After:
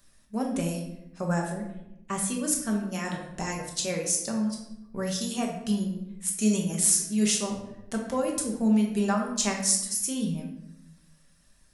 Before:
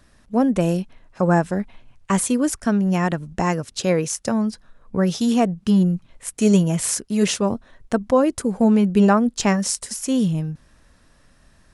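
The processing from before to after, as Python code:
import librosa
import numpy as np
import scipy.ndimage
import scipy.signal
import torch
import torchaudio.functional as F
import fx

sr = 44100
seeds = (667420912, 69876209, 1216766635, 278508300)

y = fx.high_shelf(x, sr, hz=2900.0, db=-9.5, at=(1.5, 2.28))
y = fx.dereverb_blind(y, sr, rt60_s=0.8)
y = F.preemphasis(torch.from_numpy(y), 0.8).numpy()
y = fx.room_shoebox(y, sr, seeds[0], volume_m3=270.0, walls='mixed', distance_m=1.2)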